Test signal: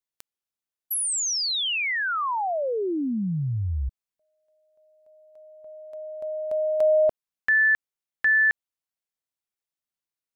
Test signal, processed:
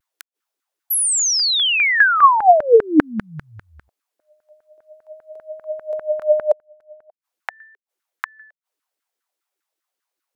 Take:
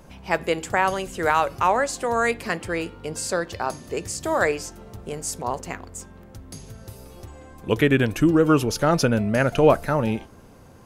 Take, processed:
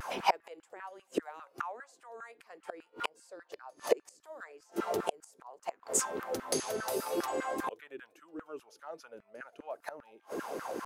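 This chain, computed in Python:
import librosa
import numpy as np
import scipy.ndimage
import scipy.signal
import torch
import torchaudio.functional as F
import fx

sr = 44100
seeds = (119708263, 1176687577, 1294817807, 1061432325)

y = fx.gate_flip(x, sr, shuts_db=-23.0, range_db=-39)
y = fx.filter_lfo_highpass(y, sr, shape='saw_down', hz=5.0, low_hz=280.0, high_hz=1600.0, q=4.4)
y = fx.vibrato(y, sr, rate_hz=0.42, depth_cents=22.0)
y = y * 10.0 ** (8.0 / 20.0)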